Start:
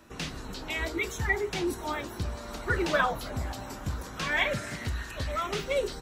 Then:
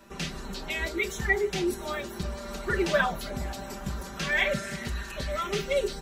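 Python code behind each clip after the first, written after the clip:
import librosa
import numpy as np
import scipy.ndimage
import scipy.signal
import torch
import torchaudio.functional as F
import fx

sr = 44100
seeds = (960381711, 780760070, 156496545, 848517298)

y = x + 0.76 * np.pad(x, (int(5.1 * sr / 1000.0), 0))[:len(x)]
y = fx.dynamic_eq(y, sr, hz=1000.0, q=1.7, threshold_db=-44.0, ratio=4.0, max_db=-5)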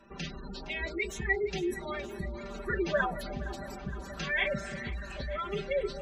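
y = fx.spec_gate(x, sr, threshold_db=-20, keep='strong')
y = fx.echo_alternate(y, sr, ms=232, hz=800.0, feedback_pct=85, wet_db=-14)
y = y * 10.0 ** (-4.0 / 20.0)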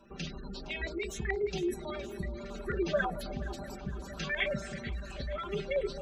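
y = fx.filter_lfo_notch(x, sr, shape='square', hz=9.2, low_hz=950.0, high_hz=1900.0, q=1.2)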